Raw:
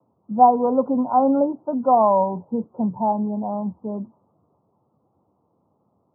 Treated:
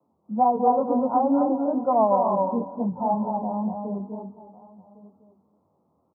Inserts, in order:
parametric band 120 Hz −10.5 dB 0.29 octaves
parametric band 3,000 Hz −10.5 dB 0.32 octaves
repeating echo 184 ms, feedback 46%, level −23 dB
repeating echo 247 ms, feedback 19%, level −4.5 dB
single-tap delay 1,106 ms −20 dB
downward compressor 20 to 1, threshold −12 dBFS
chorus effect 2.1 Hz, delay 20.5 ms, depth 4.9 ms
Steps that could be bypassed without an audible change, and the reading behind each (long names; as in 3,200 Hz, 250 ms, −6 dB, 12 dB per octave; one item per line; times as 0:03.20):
parametric band 3,000 Hz: nothing at its input above 1,100 Hz